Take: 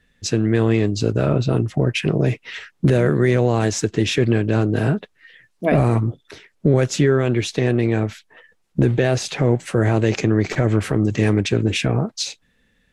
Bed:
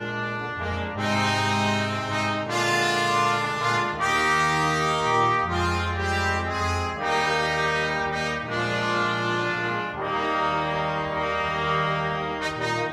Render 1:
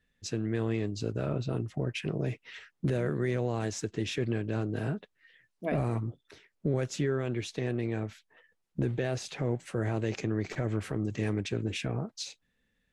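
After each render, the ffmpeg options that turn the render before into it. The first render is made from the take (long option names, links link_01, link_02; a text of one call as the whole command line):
ffmpeg -i in.wav -af "volume=-13.5dB" out.wav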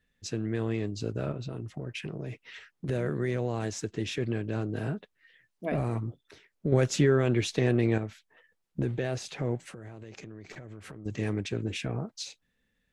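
ffmpeg -i in.wav -filter_complex "[0:a]asettb=1/sr,asplit=3[link_01][link_02][link_03];[link_01]atrim=end=1.314[link_04];[link_02]atrim=start=1.31:end=2.89,asetpts=PTS-STARTPTS,afade=type=in:duration=0.004:curve=qsin,afade=type=out:start_time=1.576:duration=0.004:curve=qsin,acompressor=threshold=-32dB:ratio=6:attack=3.2:release=140:knee=1:detection=peak[link_05];[link_03]atrim=start=2.886[link_06];[link_04][link_05]acrossfade=duration=0.004:curve1=hsin:curve2=qsin[link_07];[link_07][link_06]acrossfade=duration=0.004:curve1=qsin:curve2=hsin,asettb=1/sr,asplit=3[link_08][link_09][link_10];[link_08]atrim=end=6.724[link_11];[link_09]atrim=start=6.72:end=7.98,asetpts=PTS-STARTPTS,afade=type=in:duration=0.004:curve=qsin,afade=type=out:start_time=1.256:duration=0.004:curve=qsin,acontrast=80[link_12];[link_10]atrim=start=7.976[link_13];[link_11][link_12]acrossfade=duration=0.004:curve1=hsin:curve2=qsin[link_14];[link_14][link_13]acrossfade=duration=0.004:curve1=qsin:curve2=hsin,asettb=1/sr,asplit=3[link_15][link_16][link_17];[link_15]atrim=end=9.624[link_18];[link_16]atrim=start=9.62:end=11.06,asetpts=PTS-STARTPTS,afade=type=in:duration=0.004:curve=qsin,afade=type=out:start_time=1.436:duration=0.004:curve=qsin,acompressor=threshold=-40dB:ratio=16:attack=3.2:release=140:knee=1:detection=peak[link_19];[link_17]atrim=start=11.056[link_20];[link_18][link_19]acrossfade=duration=0.004:curve1=hsin:curve2=qsin[link_21];[link_21][link_20]acrossfade=duration=0.004:curve1=qsin:curve2=hsin" out.wav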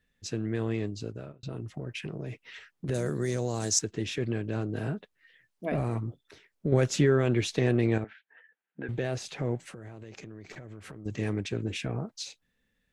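ffmpeg -i in.wav -filter_complex "[0:a]asettb=1/sr,asplit=3[link_01][link_02][link_03];[link_01]atrim=end=2.944[link_04];[link_02]atrim=start=2.94:end=3.79,asetpts=PTS-STARTPTS,afade=type=in:duration=0.004:curve=qsin,afade=type=out:start_time=0.846:duration=0.004:curve=qsin,highshelf=frequency=3900:width_type=q:width=1.5:gain=13[link_05];[link_03]atrim=start=3.786[link_06];[link_04][link_05]acrossfade=duration=0.004:curve1=hsin:curve2=qsin[link_07];[link_07][link_06]acrossfade=duration=0.004:curve1=qsin:curve2=hsin,asettb=1/sr,asplit=3[link_08][link_09][link_10];[link_08]atrim=end=8.044[link_11];[link_09]atrim=start=8.04:end=8.89,asetpts=PTS-STARTPTS,afade=type=in:duration=0.004:curve=qsin,afade=type=out:start_time=0.846:duration=0.004:curve=qsin,highpass=350,equalizer=frequency=360:width_type=q:width=4:gain=-6,equalizer=frequency=580:width_type=q:width=4:gain=-7,equalizer=frequency=1100:width_type=q:width=4:gain=-7,equalizer=frequency=1600:width_type=q:width=4:gain=10,lowpass=frequency=2900:width=0.5412,lowpass=frequency=2900:width=1.3066[link_12];[link_10]atrim=start=8.886[link_13];[link_11][link_12]acrossfade=duration=0.004:curve1=hsin:curve2=qsin[link_14];[link_14][link_13]acrossfade=duration=0.004:curve1=qsin:curve2=hsin,asplit=2[link_15][link_16];[link_15]atrim=end=1.43,asetpts=PTS-STARTPTS,afade=type=out:start_time=0.84:duration=0.59[link_17];[link_16]atrim=start=1.43,asetpts=PTS-STARTPTS,afade=type=in:duration=0.004:curve=hsin[link_18];[link_17][link_18]concat=n=2:v=0:a=1" out.wav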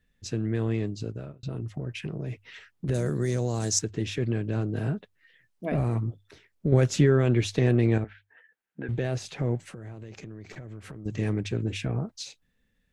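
ffmpeg -i in.wav -af "lowshelf=frequency=180:gain=7.5,bandreject=frequency=50:width_type=h:width=6,bandreject=frequency=100:width_type=h:width=6" out.wav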